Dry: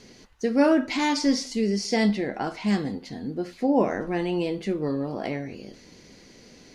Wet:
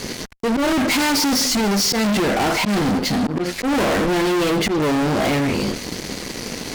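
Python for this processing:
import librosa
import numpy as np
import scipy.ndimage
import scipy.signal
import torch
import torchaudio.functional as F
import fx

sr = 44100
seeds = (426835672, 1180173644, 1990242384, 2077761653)

y = fx.auto_swell(x, sr, attack_ms=191.0)
y = fx.fuzz(y, sr, gain_db=44.0, gate_db=-52.0)
y = y * 10.0 ** (-4.0 / 20.0)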